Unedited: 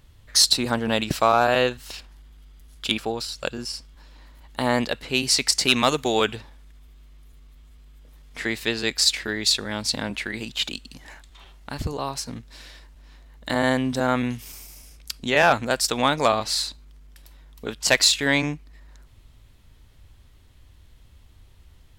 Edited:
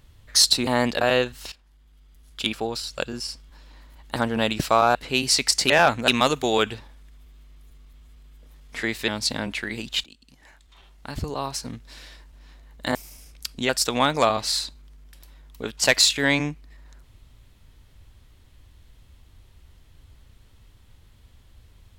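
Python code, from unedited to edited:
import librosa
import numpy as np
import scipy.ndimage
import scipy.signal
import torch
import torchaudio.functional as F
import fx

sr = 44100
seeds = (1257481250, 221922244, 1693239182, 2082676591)

y = fx.edit(x, sr, fx.swap(start_s=0.67, length_s=0.79, other_s=4.61, other_length_s=0.34),
    fx.fade_in_from(start_s=1.97, length_s=1.21, floor_db=-14.0),
    fx.cut(start_s=8.7, length_s=1.01),
    fx.fade_in_from(start_s=10.67, length_s=1.41, floor_db=-19.5),
    fx.cut(start_s=13.58, length_s=1.02),
    fx.move(start_s=15.34, length_s=0.38, to_s=5.7), tone=tone)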